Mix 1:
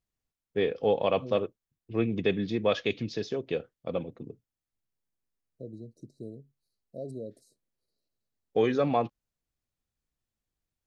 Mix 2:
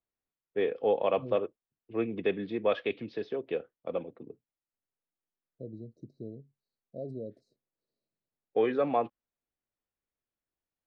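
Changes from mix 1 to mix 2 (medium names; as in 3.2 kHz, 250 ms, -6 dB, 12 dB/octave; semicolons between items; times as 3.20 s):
first voice: add three-band isolator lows -13 dB, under 260 Hz, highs -14 dB, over 4.2 kHz; master: add distance through air 240 m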